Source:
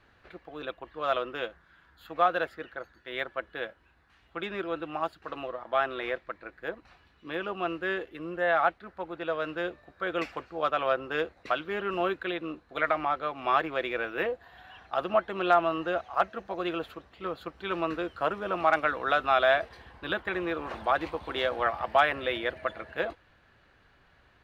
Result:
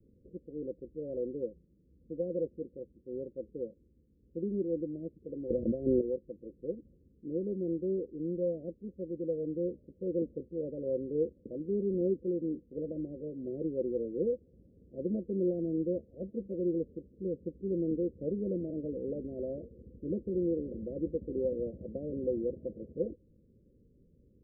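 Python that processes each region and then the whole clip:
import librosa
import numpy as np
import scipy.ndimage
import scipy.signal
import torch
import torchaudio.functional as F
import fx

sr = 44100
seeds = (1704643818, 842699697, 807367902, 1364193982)

y = fx.chain(x, sr, fx.low_shelf(hz=170.0, db=7.5),
    fx.env_flatten(amount_pct=70), at=(5.5, 6.01))
y = scipy.signal.sosfilt(scipy.signal.butter(16, 530.0, 'lowpass', fs=sr, output='sos'), y)
y = fx.peak_eq(y, sr, hz=210.0, db=8.0, octaves=0.9)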